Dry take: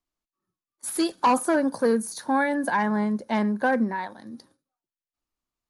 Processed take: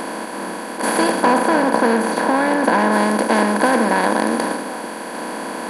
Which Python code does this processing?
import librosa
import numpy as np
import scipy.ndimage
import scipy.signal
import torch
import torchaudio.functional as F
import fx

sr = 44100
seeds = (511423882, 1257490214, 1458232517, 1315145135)

y = fx.bin_compress(x, sr, power=0.2)
y = fx.high_shelf(y, sr, hz=4200.0, db=-7.0, at=(1.23, 2.92))